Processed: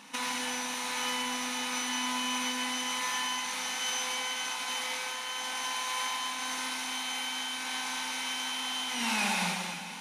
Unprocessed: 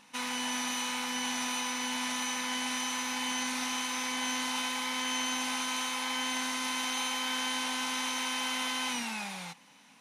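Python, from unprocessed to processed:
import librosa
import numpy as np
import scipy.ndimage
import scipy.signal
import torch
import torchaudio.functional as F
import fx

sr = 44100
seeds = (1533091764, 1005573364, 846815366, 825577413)

p1 = scipy.signal.sosfilt(scipy.signal.butter(2, 120.0, 'highpass', fs=sr, output='sos'), x)
p2 = fx.over_compress(p1, sr, threshold_db=-37.0, ratio=-0.5)
p3 = p2 + fx.echo_split(p2, sr, split_hz=710.0, low_ms=394, high_ms=516, feedback_pct=52, wet_db=-13, dry=0)
p4 = fx.rev_gated(p3, sr, seeds[0], gate_ms=310, shape='flat', drr_db=-1.0)
y = p4 * 10.0 ** (1.5 / 20.0)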